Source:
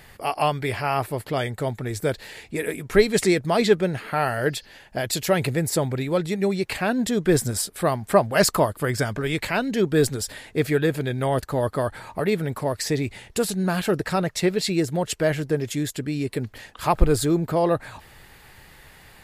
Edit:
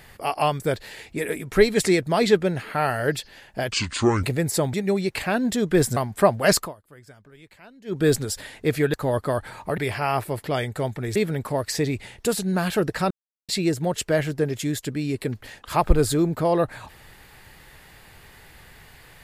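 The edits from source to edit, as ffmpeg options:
-filter_complex "[0:a]asplit=13[a][b][c][d][e][f][g][h][i][j][k][l][m];[a]atrim=end=0.602[n];[b]atrim=start=1.978:end=5.104[o];[c]atrim=start=5.1:end=5.42,asetpts=PTS-STARTPTS,asetrate=27342,aresample=44100,atrim=end_sample=22761,asetpts=PTS-STARTPTS[p];[d]atrim=start=5.416:end=5.922[q];[e]atrim=start=6.278:end=7.512[r];[f]atrim=start=7.878:end=8.66,asetpts=PTS-STARTPTS,afade=t=out:st=0.622:d=0.16:c=qua:silence=0.0630957[s];[g]atrim=start=8.66:end=9.73,asetpts=PTS-STARTPTS,volume=-24dB[t];[h]atrim=start=9.73:end=10.852,asetpts=PTS-STARTPTS,afade=t=in:d=0.16:c=qua:silence=0.0630957[u];[i]atrim=start=11.428:end=12.272[v];[j]atrim=start=0.598:end=1.982[w];[k]atrim=start=12.268:end=14.22,asetpts=PTS-STARTPTS,afade=t=out:st=1.948:d=0.004:c=hsin[x];[l]atrim=start=14.22:end=14.6,asetpts=PTS-STARTPTS,volume=0[y];[m]atrim=start=14.6,asetpts=PTS-STARTPTS,afade=t=in:d=0.004:c=hsin[z];[n][o]acrossfade=d=0.004:c1=hsin:c2=hsin[aa];[aa][p]acrossfade=d=0.004:c1=hsin:c2=hsin[ab];[ab][q]acrossfade=d=0.004:c1=hsin:c2=hsin[ac];[ac][r]acrossfade=d=0.004:c1=hsin:c2=hsin[ad];[s][t][u]concat=n=3:v=0:a=1[ae];[ad][ae]acrossfade=d=0.004:c1=hsin:c2=hsin[af];[af][v]acrossfade=d=0.004:c1=hsin:c2=hsin[ag];[ag][w]acrossfade=d=0.004:c1=hsin:c2=hsin[ah];[x][y][z]concat=n=3:v=0:a=1[ai];[ah][ai]acrossfade=d=0.004:c1=hsin:c2=hsin"

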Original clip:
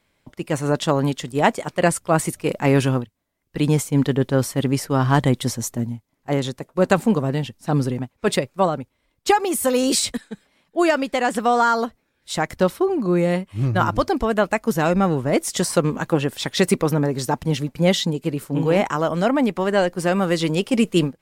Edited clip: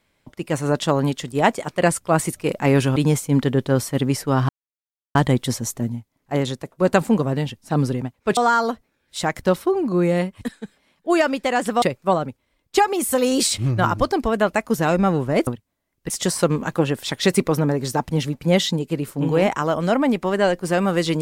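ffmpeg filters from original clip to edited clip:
-filter_complex "[0:a]asplit=9[a][b][c][d][e][f][g][h][i];[a]atrim=end=2.962[j];[b]atrim=start=3.588:end=5.12,asetpts=PTS-STARTPTS,afade=t=out:st=1.528:d=0.004:c=hsin,apad=pad_dur=0.66[k];[c]atrim=start=5.12:end=8.342,asetpts=PTS-STARTPTS,afade=t=in:d=0.004:c=hsin[l];[d]atrim=start=11.508:end=13.552[m];[e]atrim=start=10.098:end=11.512[n];[f]atrim=start=8.338:end=10.102[o];[g]atrim=start=13.548:end=15.442[p];[h]atrim=start=2.958:end=3.592[q];[i]atrim=start=15.438[r];[k][l]concat=n=2:v=0:a=1[s];[j][s]acrossfade=d=0.004:c1=hsin:c2=hsin[t];[t][m]acrossfade=d=0.004:c1=hsin:c2=hsin[u];[u][n]acrossfade=d=0.004:c1=hsin:c2=hsin[v];[v][o]acrossfade=d=0.004:c1=hsin:c2=hsin[w];[w][p]acrossfade=d=0.004:c1=hsin:c2=hsin[x];[x][q]acrossfade=d=0.004:c1=hsin:c2=hsin[y];[y][r]acrossfade=d=0.004:c1=hsin:c2=hsin"

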